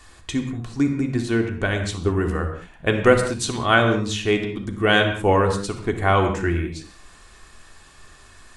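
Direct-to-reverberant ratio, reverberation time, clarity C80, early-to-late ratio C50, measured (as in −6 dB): 3.0 dB, non-exponential decay, 9.5 dB, 7.0 dB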